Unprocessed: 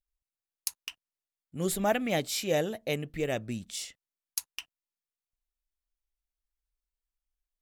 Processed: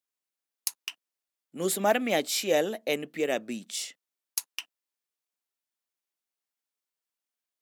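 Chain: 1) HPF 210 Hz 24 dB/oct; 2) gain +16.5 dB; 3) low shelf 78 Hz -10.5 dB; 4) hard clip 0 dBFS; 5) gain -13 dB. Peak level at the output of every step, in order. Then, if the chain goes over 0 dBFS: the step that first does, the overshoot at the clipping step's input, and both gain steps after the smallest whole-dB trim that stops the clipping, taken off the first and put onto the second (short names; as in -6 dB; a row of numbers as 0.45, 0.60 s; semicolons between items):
-9.5, +7.0, +7.0, 0.0, -13.0 dBFS; step 2, 7.0 dB; step 2 +9.5 dB, step 5 -6 dB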